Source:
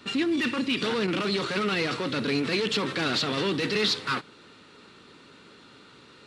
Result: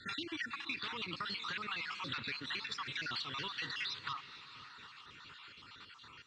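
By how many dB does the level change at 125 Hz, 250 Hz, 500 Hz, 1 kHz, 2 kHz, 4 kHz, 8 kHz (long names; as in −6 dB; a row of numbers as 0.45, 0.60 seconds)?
−17.5, −22.5, −26.0, −10.5, −10.0, −11.0, −16.0 decibels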